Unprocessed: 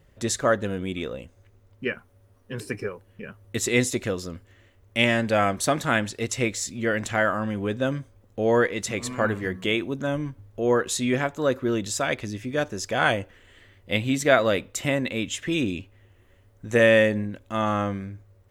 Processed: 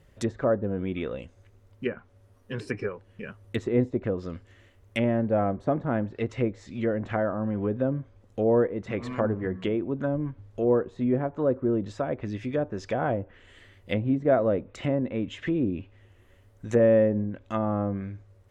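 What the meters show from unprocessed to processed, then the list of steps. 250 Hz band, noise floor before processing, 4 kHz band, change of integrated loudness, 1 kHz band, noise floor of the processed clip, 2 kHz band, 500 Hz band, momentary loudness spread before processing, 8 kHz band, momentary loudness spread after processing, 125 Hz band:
0.0 dB, -58 dBFS, -15.0 dB, -2.5 dB, -6.0 dB, -58 dBFS, -13.0 dB, -1.5 dB, 15 LU, under -20 dB, 12 LU, 0.0 dB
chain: low-pass that closes with the level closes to 680 Hz, closed at -22 dBFS

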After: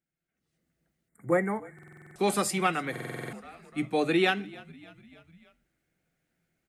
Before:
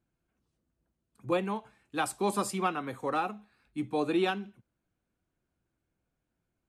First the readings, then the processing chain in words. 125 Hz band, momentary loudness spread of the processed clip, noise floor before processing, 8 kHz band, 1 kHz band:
+4.0 dB, 19 LU, -84 dBFS, +4.0 dB, +0.5 dB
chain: bass shelf 290 Hz -9.5 dB; frequency-shifting echo 297 ms, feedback 57%, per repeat -39 Hz, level -22 dB; level rider gain up to 14.5 dB; hum notches 50/100/150 Hz; time-frequency box 1.08–1.99 s, 2.3–6.8 kHz -28 dB; graphic EQ with 31 bands 160 Hz +11 dB, 1 kHz -11 dB, 2 kHz +9 dB; buffer glitch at 1.74/2.91 s, samples 2048, times 8; trim -7.5 dB

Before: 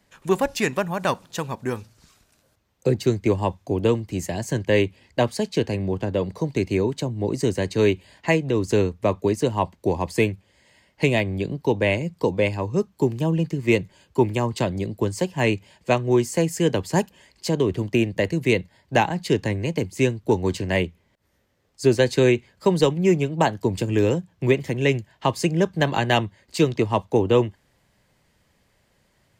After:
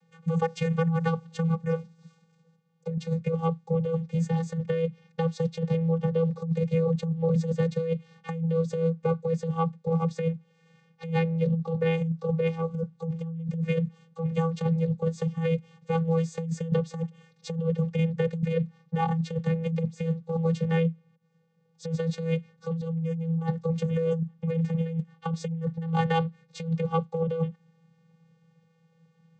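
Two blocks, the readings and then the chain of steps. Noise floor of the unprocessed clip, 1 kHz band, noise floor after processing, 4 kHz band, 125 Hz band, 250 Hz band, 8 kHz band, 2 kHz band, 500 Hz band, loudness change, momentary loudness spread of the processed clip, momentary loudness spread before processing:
-65 dBFS, -7.5 dB, -66 dBFS, -14.0 dB, -1.0 dB, -5.0 dB, under -15 dB, -13.0 dB, -7.5 dB, -5.5 dB, 7 LU, 6 LU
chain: vocoder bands 16, square 164 Hz; compressor with a negative ratio -26 dBFS, ratio -1

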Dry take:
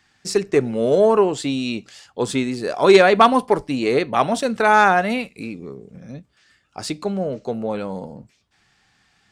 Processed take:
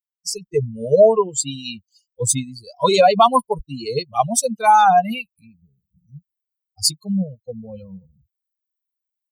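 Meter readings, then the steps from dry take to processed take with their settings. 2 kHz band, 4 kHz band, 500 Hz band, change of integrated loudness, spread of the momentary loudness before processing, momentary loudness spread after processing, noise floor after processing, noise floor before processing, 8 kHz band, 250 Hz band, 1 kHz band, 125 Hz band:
-8.0 dB, +2.5 dB, -1.5 dB, +0.5 dB, 19 LU, 21 LU, under -85 dBFS, -63 dBFS, +11.0 dB, -5.0 dB, +2.5 dB, +1.5 dB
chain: expander on every frequency bin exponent 3; treble shelf 4.8 kHz +10.5 dB; peak limiter -13.5 dBFS, peak gain reduction 12 dB; level rider gain up to 16 dB; static phaser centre 740 Hz, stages 4

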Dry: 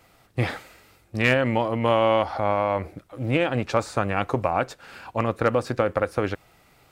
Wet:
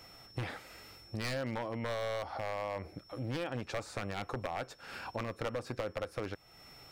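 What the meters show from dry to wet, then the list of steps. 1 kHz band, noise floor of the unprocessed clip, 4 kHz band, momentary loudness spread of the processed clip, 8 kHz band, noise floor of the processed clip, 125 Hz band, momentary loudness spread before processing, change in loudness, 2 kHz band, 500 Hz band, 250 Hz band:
-15.5 dB, -59 dBFS, -10.0 dB, 9 LU, -7.5 dB, -59 dBFS, -13.0 dB, 12 LU, -15.0 dB, -14.0 dB, -15.0 dB, -14.5 dB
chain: one-sided wavefolder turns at -15.5 dBFS; whistle 5.4 kHz -55 dBFS; compression 2.5:1, threshold -41 dBFS, peak gain reduction 15 dB

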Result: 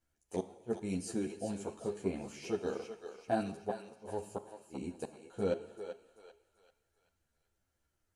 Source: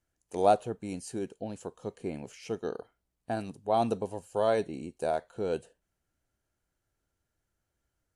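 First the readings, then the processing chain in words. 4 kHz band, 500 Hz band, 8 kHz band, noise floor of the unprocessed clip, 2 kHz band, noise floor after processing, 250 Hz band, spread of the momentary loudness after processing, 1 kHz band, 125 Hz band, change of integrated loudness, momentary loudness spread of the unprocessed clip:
-6.0 dB, -7.5 dB, -1.0 dB, -83 dBFS, -5.0 dB, -82 dBFS, -2.0 dB, 11 LU, -12.5 dB, -3.5 dB, -7.5 dB, 13 LU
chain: inverted gate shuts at -20 dBFS, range -40 dB; on a send: thinning echo 388 ms, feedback 45%, high-pass 650 Hz, level -8 dB; on the sum: gated-style reverb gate 340 ms falling, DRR 10.5 dB; three-phase chorus; trim +2 dB

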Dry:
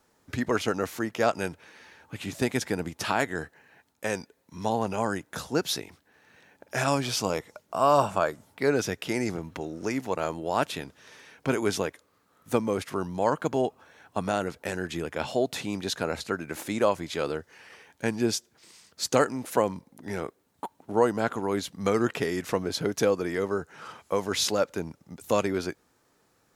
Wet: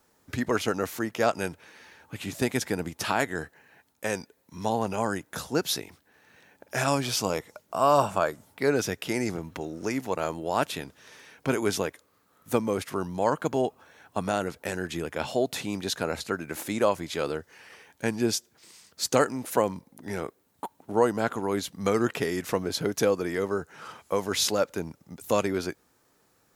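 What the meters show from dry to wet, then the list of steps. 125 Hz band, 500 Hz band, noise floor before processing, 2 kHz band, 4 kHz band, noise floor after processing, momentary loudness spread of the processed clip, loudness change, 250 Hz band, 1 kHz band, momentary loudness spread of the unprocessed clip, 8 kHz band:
0.0 dB, 0.0 dB, -68 dBFS, 0.0 dB, +0.5 dB, -67 dBFS, 12 LU, 0.0 dB, 0.0 dB, 0.0 dB, 11 LU, +1.5 dB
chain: treble shelf 12 kHz +8.5 dB

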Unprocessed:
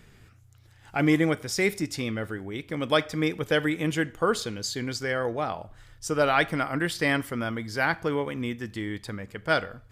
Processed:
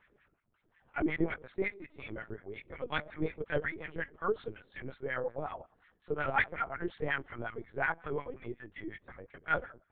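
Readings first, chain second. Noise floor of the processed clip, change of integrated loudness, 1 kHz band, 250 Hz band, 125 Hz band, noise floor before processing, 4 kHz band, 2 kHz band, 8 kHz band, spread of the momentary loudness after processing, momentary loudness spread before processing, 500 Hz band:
-74 dBFS, -9.0 dB, -7.5 dB, -12.0 dB, -12.5 dB, -55 dBFS, -17.5 dB, -7.0 dB, under -40 dB, 13 LU, 11 LU, -9.5 dB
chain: LFO band-pass sine 5.5 Hz 340–2000 Hz; LPC vocoder at 8 kHz pitch kept; trim -2 dB

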